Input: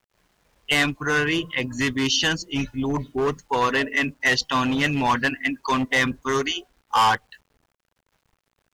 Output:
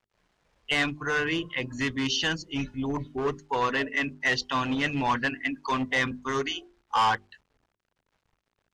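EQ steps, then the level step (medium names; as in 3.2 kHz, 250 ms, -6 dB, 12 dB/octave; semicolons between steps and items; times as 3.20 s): distance through air 58 m; hum notches 50/100/150/200/250/300/350/400 Hz; -4.5 dB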